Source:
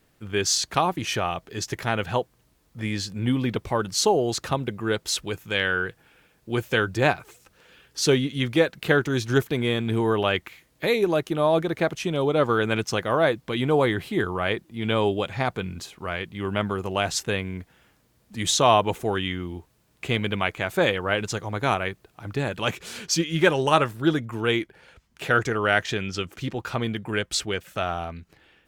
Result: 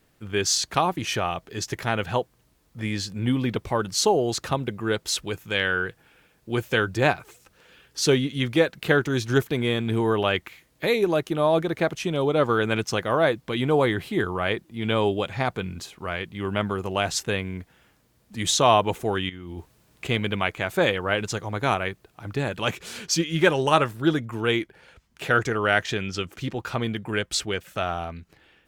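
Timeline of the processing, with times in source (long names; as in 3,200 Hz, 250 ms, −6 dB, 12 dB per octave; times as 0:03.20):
0:19.29–0:20.07: compressor whose output falls as the input rises −37 dBFS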